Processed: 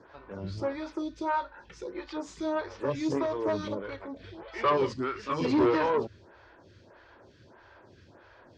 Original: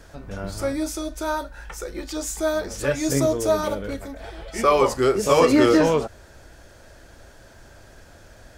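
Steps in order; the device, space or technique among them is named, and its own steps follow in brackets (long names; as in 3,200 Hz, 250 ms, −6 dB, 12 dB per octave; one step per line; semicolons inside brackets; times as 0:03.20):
0:04.92–0:05.45: flat-topped bell 610 Hz −15 dB
vibe pedal into a guitar amplifier (phaser with staggered stages 1.6 Hz; tube saturation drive 19 dB, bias 0.35; loudspeaker in its box 90–4,600 Hz, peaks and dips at 99 Hz +7 dB, 360 Hz +5 dB, 680 Hz −4 dB, 1,000 Hz +8 dB)
level −2.5 dB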